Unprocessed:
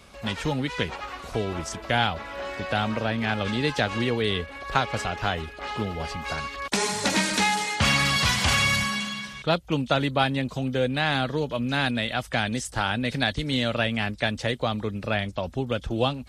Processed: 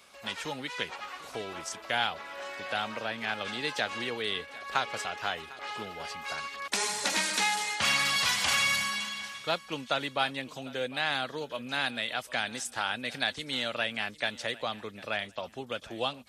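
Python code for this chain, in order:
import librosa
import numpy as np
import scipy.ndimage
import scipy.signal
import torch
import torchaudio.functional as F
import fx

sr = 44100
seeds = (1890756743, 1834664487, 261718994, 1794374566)

y = fx.highpass(x, sr, hz=770.0, slope=6)
y = fx.high_shelf(y, sr, hz=11000.0, db=5.0)
y = fx.echo_feedback(y, sr, ms=751, feedback_pct=28, wet_db=-20)
y = y * 10.0 ** (-3.5 / 20.0)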